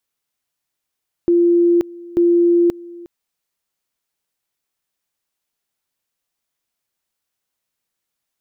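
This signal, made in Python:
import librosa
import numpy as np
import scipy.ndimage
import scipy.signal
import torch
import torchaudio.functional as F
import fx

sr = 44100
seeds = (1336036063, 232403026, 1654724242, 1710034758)

y = fx.two_level_tone(sr, hz=345.0, level_db=-10.0, drop_db=22.0, high_s=0.53, low_s=0.36, rounds=2)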